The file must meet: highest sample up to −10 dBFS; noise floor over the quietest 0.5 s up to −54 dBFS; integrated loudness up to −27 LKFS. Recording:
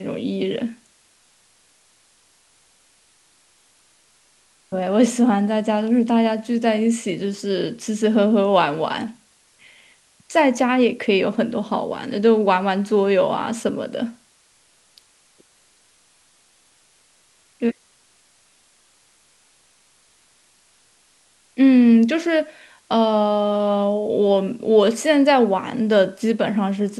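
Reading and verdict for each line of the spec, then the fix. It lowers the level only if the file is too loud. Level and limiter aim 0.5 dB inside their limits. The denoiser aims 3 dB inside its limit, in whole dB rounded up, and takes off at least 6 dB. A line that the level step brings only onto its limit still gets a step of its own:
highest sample −3.0 dBFS: out of spec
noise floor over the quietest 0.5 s −58 dBFS: in spec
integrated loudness −19.0 LKFS: out of spec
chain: level −8.5 dB

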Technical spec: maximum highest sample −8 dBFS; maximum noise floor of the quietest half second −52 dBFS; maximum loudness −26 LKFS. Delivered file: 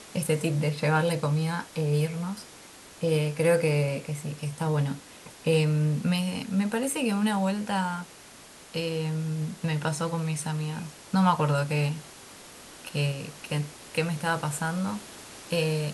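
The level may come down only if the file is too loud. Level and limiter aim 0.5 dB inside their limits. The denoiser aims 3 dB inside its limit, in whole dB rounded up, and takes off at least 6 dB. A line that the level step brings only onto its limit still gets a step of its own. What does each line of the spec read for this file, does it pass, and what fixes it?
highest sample −11.0 dBFS: in spec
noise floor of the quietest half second −49 dBFS: out of spec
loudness −28.0 LKFS: in spec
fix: broadband denoise 6 dB, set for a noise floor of −49 dBFS

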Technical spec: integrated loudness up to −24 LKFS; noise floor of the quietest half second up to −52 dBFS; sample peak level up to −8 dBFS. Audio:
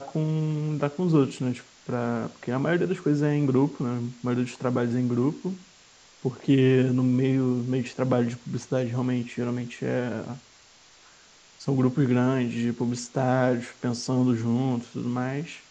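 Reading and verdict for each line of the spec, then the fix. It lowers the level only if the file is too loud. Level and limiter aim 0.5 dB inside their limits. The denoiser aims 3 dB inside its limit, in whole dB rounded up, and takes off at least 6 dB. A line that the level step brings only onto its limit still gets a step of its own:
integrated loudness −26.0 LKFS: in spec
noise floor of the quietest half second −55 dBFS: in spec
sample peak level −9.0 dBFS: in spec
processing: no processing needed

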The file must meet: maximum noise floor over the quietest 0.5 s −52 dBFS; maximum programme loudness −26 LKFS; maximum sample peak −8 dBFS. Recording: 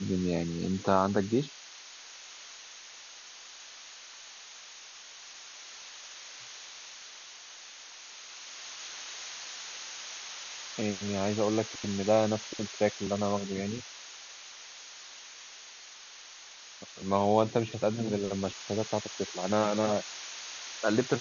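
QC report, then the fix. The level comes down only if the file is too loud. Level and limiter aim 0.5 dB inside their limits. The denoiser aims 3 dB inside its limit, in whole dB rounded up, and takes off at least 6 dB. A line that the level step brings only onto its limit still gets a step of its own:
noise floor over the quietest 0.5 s −49 dBFS: out of spec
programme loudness −32.0 LKFS: in spec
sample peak −10.0 dBFS: in spec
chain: broadband denoise 6 dB, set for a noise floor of −49 dBFS

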